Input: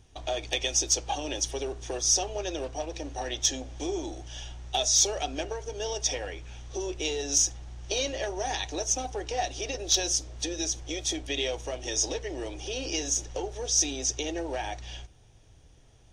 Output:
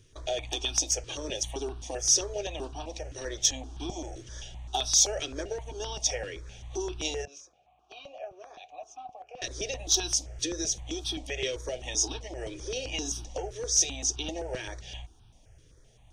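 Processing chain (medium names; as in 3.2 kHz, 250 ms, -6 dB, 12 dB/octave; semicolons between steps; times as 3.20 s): 7.25–9.42 s: vowel filter a; stepped phaser 7.7 Hz 210–2000 Hz; trim +1.5 dB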